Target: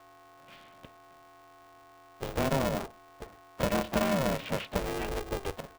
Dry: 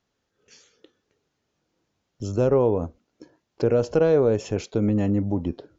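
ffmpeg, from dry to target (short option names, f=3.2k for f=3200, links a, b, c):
-filter_complex "[0:a]acrossover=split=2000[a][b];[a]acompressor=threshold=-28dB:ratio=12[c];[c][b]amix=inputs=2:normalize=0,aeval=exprs='val(0)+0.00141*sin(2*PI*950*n/s)':c=same,asplit=3[d][e][f];[e]asetrate=29433,aresample=44100,atempo=1.49831,volume=-9dB[g];[f]asetrate=52444,aresample=44100,atempo=0.840896,volume=-11dB[h];[d][g][h]amix=inputs=3:normalize=0,highpass=f=290:t=q:w=0.5412,highpass=f=290:t=q:w=1.307,lowpass=f=3.4k:t=q:w=0.5176,lowpass=f=3.4k:t=q:w=0.7071,lowpass=f=3.4k:t=q:w=1.932,afreqshift=-64,aeval=exprs='val(0)*sgn(sin(2*PI*200*n/s))':c=same,volume=3.5dB"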